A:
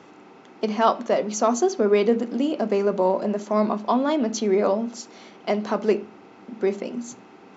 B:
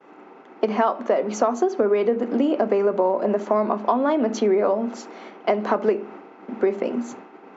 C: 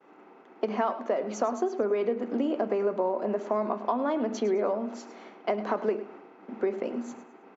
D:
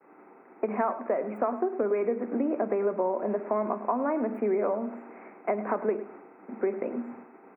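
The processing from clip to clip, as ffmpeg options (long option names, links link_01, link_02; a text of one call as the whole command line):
ffmpeg -i in.wav -filter_complex "[0:a]agate=range=-33dB:threshold=-42dB:ratio=3:detection=peak,acrossover=split=230 2400:gain=0.141 1 0.178[link_01][link_02][link_03];[link_01][link_02][link_03]amix=inputs=3:normalize=0,acompressor=threshold=-25dB:ratio=10,volume=9dB" out.wav
ffmpeg -i in.wav -af "aecho=1:1:105|210|315:0.2|0.0619|0.0192,volume=-7.5dB" out.wav
ffmpeg -i in.wav -filter_complex "[0:a]acrossover=split=120|1000|2200[link_01][link_02][link_03][link_04];[link_04]volume=35.5dB,asoftclip=hard,volume=-35.5dB[link_05];[link_01][link_02][link_03][link_05]amix=inputs=4:normalize=0,asuperstop=centerf=4800:order=20:qfactor=0.79" out.wav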